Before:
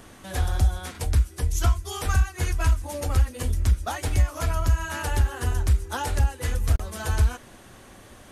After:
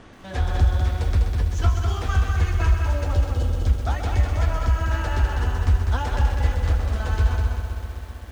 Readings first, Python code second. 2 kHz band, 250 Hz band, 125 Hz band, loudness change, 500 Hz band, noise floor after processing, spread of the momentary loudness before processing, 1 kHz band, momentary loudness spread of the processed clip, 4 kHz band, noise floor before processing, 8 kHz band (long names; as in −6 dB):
+1.5 dB, +2.5 dB, +3.0 dB, +2.5 dB, +2.0 dB, −37 dBFS, 4 LU, +2.0 dB, 5 LU, −0.5 dB, −49 dBFS, −8.5 dB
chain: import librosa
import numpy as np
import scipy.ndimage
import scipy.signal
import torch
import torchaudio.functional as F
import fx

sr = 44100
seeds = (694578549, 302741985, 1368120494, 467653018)

y = fx.spec_erase(x, sr, start_s=3.14, length_s=0.52, low_hz=820.0, high_hz=2800.0)
y = fx.rider(y, sr, range_db=3, speed_s=2.0)
y = fx.air_absorb(y, sr, metres=130.0)
y = y + 10.0 ** (-4.5 / 20.0) * np.pad(y, (int(200 * sr / 1000.0), 0))[:len(y)]
y = fx.echo_crushed(y, sr, ms=129, feedback_pct=80, bits=8, wet_db=-8.5)